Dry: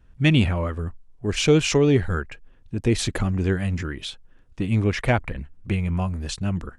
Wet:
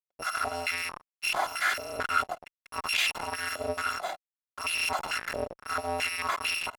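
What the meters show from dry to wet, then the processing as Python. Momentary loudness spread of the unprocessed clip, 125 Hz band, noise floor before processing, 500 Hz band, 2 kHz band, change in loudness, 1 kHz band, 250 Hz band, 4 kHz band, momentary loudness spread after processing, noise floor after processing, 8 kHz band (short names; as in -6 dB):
15 LU, -28.5 dB, -53 dBFS, -12.0 dB, +1.0 dB, -7.0 dB, +4.0 dB, -24.0 dB, -2.0 dB, 9 LU, under -85 dBFS, -3.5 dB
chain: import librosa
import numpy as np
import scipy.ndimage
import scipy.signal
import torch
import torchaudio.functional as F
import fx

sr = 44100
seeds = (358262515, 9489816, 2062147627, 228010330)

y = fx.bit_reversed(x, sr, seeds[0], block=256)
y = fx.fuzz(y, sr, gain_db=47.0, gate_db=-41.0)
y = fx.filter_held_bandpass(y, sr, hz=4.5, low_hz=580.0, high_hz=2600.0)
y = y * librosa.db_to_amplitude(4.0)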